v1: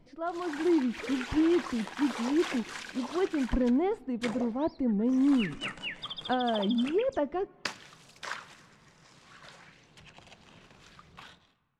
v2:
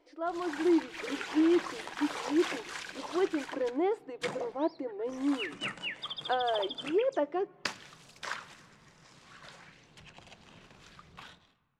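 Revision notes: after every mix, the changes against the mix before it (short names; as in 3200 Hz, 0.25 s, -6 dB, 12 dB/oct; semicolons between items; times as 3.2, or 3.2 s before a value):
speech: add brick-wall FIR high-pass 280 Hz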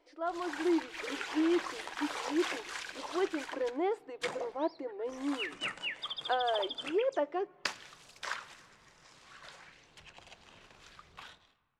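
master: add bell 170 Hz -9 dB 1.7 oct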